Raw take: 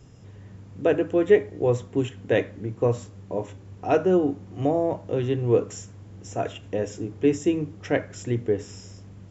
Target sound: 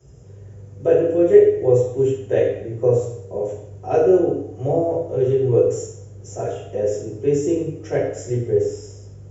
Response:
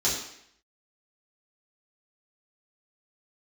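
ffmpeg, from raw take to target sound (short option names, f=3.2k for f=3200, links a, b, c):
-filter_complex "[0:a]equalizer=f=125:t=o:w=1:g=3,equalizer=f=250:t=o:w=1:g=-11,equalizer=f=500:t=o:w=1:g=8,equalizer=f=1k:t=o:w=1:g=-6,equalizer=f=2k:t=o:w=1:g=-3,equalizer=f=4k:t=o:w=1:g=-10[a];[1:a]atrim=start_sample=2205[b];[a][b]afir=irnorm=-1:irlink=0,volume=-8.5dB"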